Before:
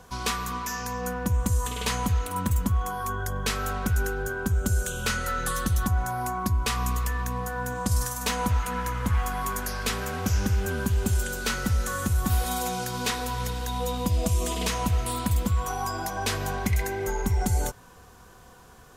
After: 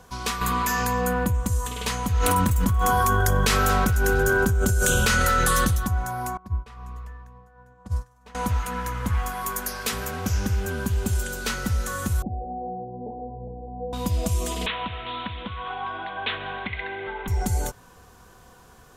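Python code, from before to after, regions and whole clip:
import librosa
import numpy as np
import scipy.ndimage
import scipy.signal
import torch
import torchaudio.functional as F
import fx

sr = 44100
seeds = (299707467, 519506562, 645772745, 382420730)

y = fx.chain(x, sr, fx.peak_eq(hz=5700.0, db=-11.5, octaves=0.25),
    fx.env_flatten(amount_pct=70), at=(0.41, 1.35))
y = fx.chain(y, sr, fx.echo_feedback(ms=230, feedback_pct=52, wet_db=-17.5),
    fx.env_flatten(amount_pct=100), at=(2.14, 5.76))
y = fx.chain(y, sr, fx.lowpass(hz=1000.0, slope=6),
    fx.peak_eq(hz=270.0, db=-5.5, octaves=1.1),
    fx.upward_expand(threshold_db=-35.0, expansion=2.5), at=(6.37, 8.35))
y = fx.chain(y, sr, fx.high_shelf(hz=9900.0, db=7.5),
    fx.hum_notches(base_hz=50, count=7), at=(9.29, 10.11))
y = fx.chain(y, sr, fx.steep_lowpass(hz=810.0, slope=96),
    fx.low_shelf(hz=150.0, db=-10.0), at=(12.22, 13.93))
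y = fx.chain(y, sr, fx.steep_lowpass(hz=3700.0, slope=96),
    fx.tilt_eq(slope=3.5), at=(14.66, 17.28))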